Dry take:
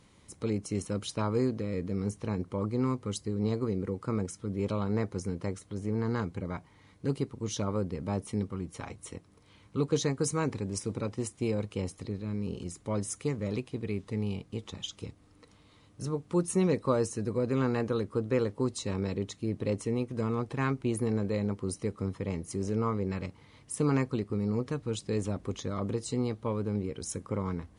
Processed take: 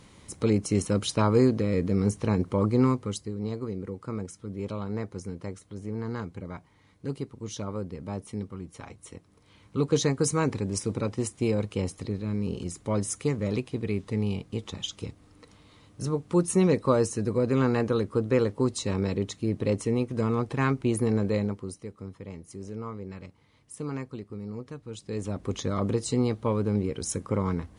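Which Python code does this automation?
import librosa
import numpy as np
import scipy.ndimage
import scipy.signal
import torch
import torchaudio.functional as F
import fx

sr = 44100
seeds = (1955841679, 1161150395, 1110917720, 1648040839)

y = fx.gain(x, sr, db=fx.line((2.82, 7.5), (3.37, -2.5), (9.03, -2.5), (10.0, 4.5), (21.37, 4.5), (21.82, -7.0), (24.88, -7.0), (25.58, 5.5)))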